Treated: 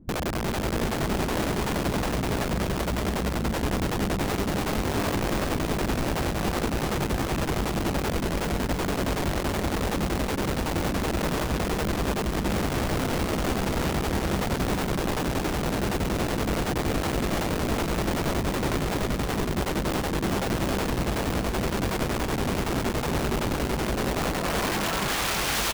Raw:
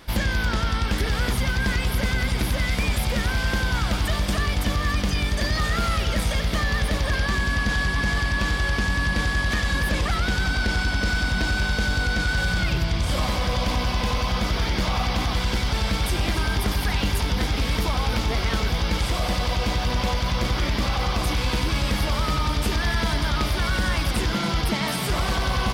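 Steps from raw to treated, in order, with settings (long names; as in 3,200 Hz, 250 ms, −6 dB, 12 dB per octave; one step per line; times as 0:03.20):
0:01.81–0:03.51: mains-hum notches 50/100/150/200/250/300/350/400/450 Hz
brickwall limiter −18 dBFS, peak gain reduction 5 dB
low-pass filter sweep 230 Hz → 3,500 Hz, 0:23.75–0:25.62
wrap-around overflow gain 21.5 dB
on a send: bouncing-ball delay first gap 390 ms, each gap 0.8×, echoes 5
on the sum: level −2 dB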